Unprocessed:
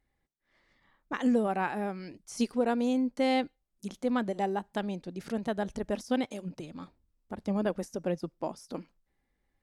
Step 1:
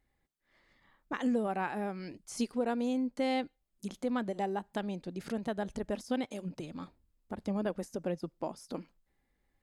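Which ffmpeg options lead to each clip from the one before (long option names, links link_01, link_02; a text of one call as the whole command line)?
ffmpeg -i in.wav -filter_complex "[0:a]bandreject=frequency=5700:width=15,asplit=2[link_01][link_02];[link_02]acompressor=threshold=-36dB:ratio=6,volume=3dB[link_03];[link_01][link_03]amix=inputs=2:normalize=0,volume=-7dB" out.wav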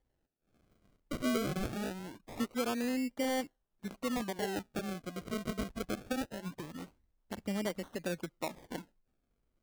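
ffmpeg -i in.wav -af "acrusher=samples=34:mix=1:aa=0.000001:lfo=1:lforange=34:lforate=0.23,volume=-2dB" out.wav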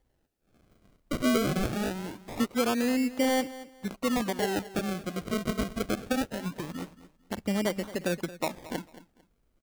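ffmpeg -i in.wav -af "aecho=1:1:224|448:0.15|0.0359,volume=7dB" out.wav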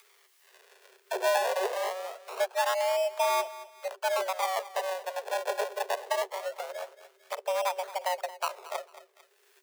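ffmpeg -i in.wav -filter_complex "[0:a]acrossover=split=920[link_01][link_02];[link_02]acompressor=mode=upward:threshold=-42dB:ratio=2.5[link_03];[link_01][link_03]amix=inputs=2:normalize=0,afreqshift=370,volume=-1dB" out.wav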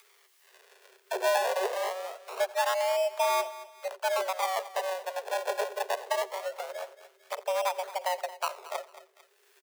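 ffmpeg -i in.wav -af "aecho=1:1:86:0.0891" out.wav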